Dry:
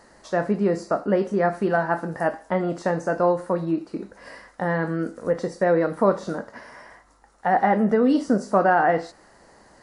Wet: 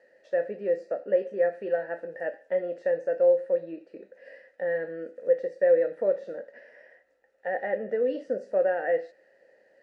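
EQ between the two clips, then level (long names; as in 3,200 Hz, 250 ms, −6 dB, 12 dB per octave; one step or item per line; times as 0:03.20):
formant filter e
+2.0 dB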